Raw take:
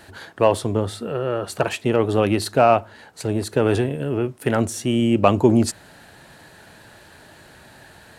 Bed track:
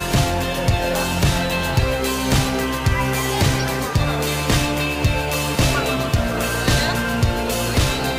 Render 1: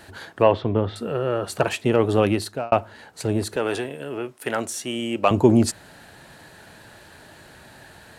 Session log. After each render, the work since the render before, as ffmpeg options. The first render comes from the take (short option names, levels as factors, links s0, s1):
-filter_complex "[0:a]asettb=1/sr,asplit=3[s0][s1][s2];[s0]atrim=end=0.424[s3];[s1]atrim=start=0.42:end=0.96,asetpts=PTS-STARTPTS,afade=t=in:d=0.004:c=qsin,afade=t=out:st=0.536:d=0.004:c=qsin,lowpass=f=3500:w=0.5412,lowpass=f=3500:w=1.3066[s4];[s2]atrim=start=0.956[s5];[s3][s4]acrossfade=d=0.004:c1=hsin:c2=qsin[s6];[s6][s5]acrossfade=d=0.004:c1=qsin:c2=hsin,asettb=1/sr,asplit=3[s7][s8][s9];[s7]atrim=end=3.564[s10];[s8]atrim=start=3.56:end=5.31,asetpts=PTS-STARTPTS,afade=t=in:d=0.004:c=qsin,afade=t=out:st=1.746:d=0.004:c=qsin,highpass=f=720:p=1[s11];[s9]atrim=start=5.306[s12];[s10][s11]acrossfade=d=0.004:c1=hsin:c2=qsin[s13];[s13][s12]acrossfade=d=0.004:c1=qsin:c2=hsin,asplit=2[s14][s15];[s14]atrim=end=2.72,asetpts=PTS-STARTPTS,afade=t=out:st=2.25:d=0.47[s16];[s15]atrim=start=2.72,asetpts=PTS-STARTPTS,afade=t=in:d=0.004:c=hsin[s17];[s16][s17]concat=n=2:v=0:a=1"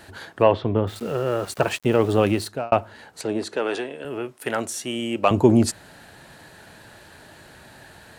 -filter_complex "[0:a]asettb=1/sr,asplit=3[s0][s1][s2];[s0]atrim=end=0.874[s3];[s1]atrim=start=0.87:end=2.48,asetpts=PTS-STARTPTS,afade=t=in:d=0.004:c=qsin,afade=t=out:st=1.606:d=0.004:c=qsin,aeval=exprs='val(0)*gte(abs(val(0)),0.0126)':c=same[s4];[s2]atrim=start=2.476[s5];[s3][s4]acrossfade=d=0.004:c1=hsin:c2=qsin[s6];[s6][s5]acrossfade=d=0.004:c1=qsin:c2=hsin,asettb=1/sr,asplit=3[s7][s8][s9];[s7]atrim=end=3.214[s10];[s8]atrim=start=3.21:end=4.05,asetpts=PTS-STARTPTS,afade=t=in:d=0.004:c=qsin,afade=t=out:st=0.836:d=0.004:c=qsin,highpass=240,lowpass=6600[s11];[s9]atrim=start=4.046[s12];[s10][s11]acrossfade=d=0.004:c1=hsin:c2=qsin[s13];[s13][s12]acrossfade=d=0.004:c1=qsin:c2=hsin"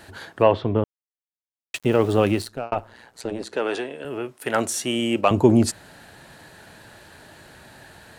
-filter_complex "[0:a]asettb=1/sr,asplit=3[s0][s1][s2];[s0]atrim=end=2.424[s3];[s1]atrim=start=2.42:end=3.53,asetpts=PTS-STARTPTS,afade=t=in:d=0.004:c=qsin,afade=t=out:st=1.106:d=0.004:c=qsin,tremolo=f=120:d=0.824[s4];[s2]atrim=start=3.526[s5];[s3][s4]acrossfade=d=0.004:c1=hsin:c2=qsin[s6];[s6][s5]acrossfade=d=0.004:c1=qsin:c2=hsin,asplit=5[s7][s8][s9][s10][s11];[s7]atrim=end=0.84,asetpts=PTS-STARTPTS,afade=t=out:st=0.836:d=0.004:c=hsin[s12];[s8]atrim=start=0.84:end=1.74,asetpts=PTS-STARTPTS,volume=0[s13];[s9]atrim=start=1.74:end=4.542,asetpts=PTS-STARTPTS,afade=t=in:d=0.004:c=hsin[s14];[s10]atrim=start=4.538:end=5.212,asetpts=PTS-STARTPTS,volume=1.58[s15];[s11]atrim=start=5.208[s16];[s12][s13][s14]concat=n=3:v=0:a=1[s17];[s17][s15]acrossfade=d=0.004:c1=hsin:c2=hsin[s18];[s18][s16]acrossfade=d=0.004:c1=hsin:c2=hsin"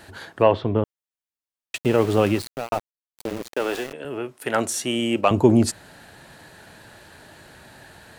-filter_complex "[0:a]asettb=1/sr,asplit=3[s0][s1][s2];[s0]atrim=end=1.784[s3];[s1]atrim=start=1.78:end=3.93,asetpts=PTS-STARTPTS,afade=t=in:d=0.004:c=qsin,afade=t=out:st=2.146:d=0.004:c=qsin,aeval=exprs='val(0)*gte(abs(val(0)),0.0299)':c=same[s4];[s2]atrim=start=3.926[s5];[s3][s4]acrossfade=d=0.004:c1=hsin:c2=qsin[s6];[s6][s5]acrossfade=d=0.004:c1=qsin:c2=hsin"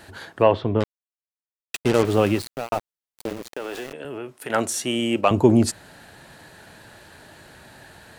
-filter_complex "[0:a]asettb=1/sr,asplit=3[s0][s1][s2];[s0]atrim=end=0.804[s3];[s1]atrim=start=0.8:end=2.05,asetpts=PTS-STARTPTS,afade=t=in:d=0.004:c=qsin,afade=t=out:st=1.246:d=0.004:c=qsin,acrusher=bits=3:mix=0:aa=0.5[s4];[s2]atrim=start=2.046[s5];[s3][s4]acrossfade=d=0.004:c1=hsin:c2=qsin[s6];[s6][s5]acrossfade=d=0.004:c1=qsin:c2=hsin,asettb=1/sr,asplit=3[s7][s8][s9];[s7]atrim=end=3.324[s10];[s8]atrim=start=3.32:end=4.5,asetpts=PTS-STARTPTS,afade=t=in:d=0.004:c=qsin,afade=t=out:st=1.176:d=0.004:c=qsin,acompressor=threshold=0.0355:ratio=3:attack=3.2:release=140:knee=1:detection=peak[s11];[s9]atrim=start=4.496[s12];[s10][s11]acrossfade=d=0.004:c1=hsin:c2=qsin[s13];[s13][s12]acrossfade=d=0.004:c1=qsin:c2=hsin"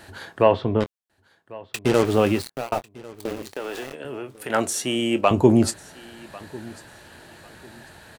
-filter_complex "[0:a]asplit=2[s0][s1];[s1]adelay=23,volume=0.237[s2];[s0][s2]amix=inputs=2:normalize=0,aecho=1:1:1097|2194:0.0841|0.0219"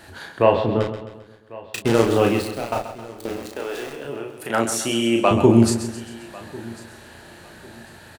-filter_complex "[0:a]asplit=2[s0][s1];[s1]adelay=35,volume=0.631[s2];[s0][s2]amix=inputs=2:normalize=0,aecho=1:1:132|264|396|528|660:0.299|0.149|0.0746|0.0373|0.0187"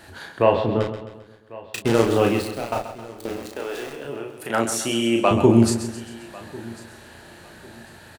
-af "volume=0.891,alimiter=limit=0.708:level=0:latency=1"